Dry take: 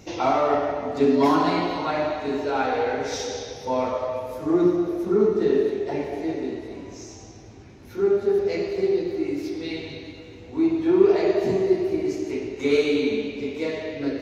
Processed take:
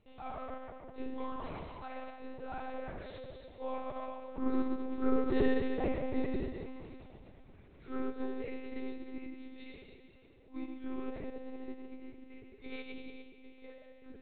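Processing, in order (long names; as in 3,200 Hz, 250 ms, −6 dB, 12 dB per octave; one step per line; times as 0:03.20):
source passing by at 0:06.09, 6 m/s, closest 5.1 metres
one-pitch LPC vocoder at 8 kHz 260 Hz
level −4.5 dB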